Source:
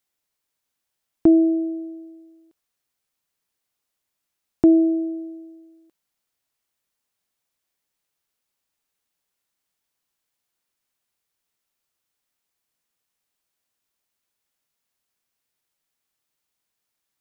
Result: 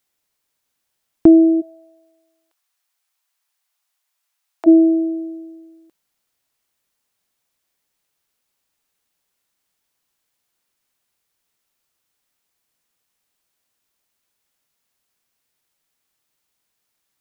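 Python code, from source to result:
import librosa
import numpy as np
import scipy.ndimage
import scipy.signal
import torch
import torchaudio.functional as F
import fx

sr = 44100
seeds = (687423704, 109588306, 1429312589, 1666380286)

y = fx.highpass(x, sr, hz=700.0, slope=24, at=(1.6, 4.66), fade=0.02)
y = F.gain(torch.from_numpy(y), 5.5).numpy()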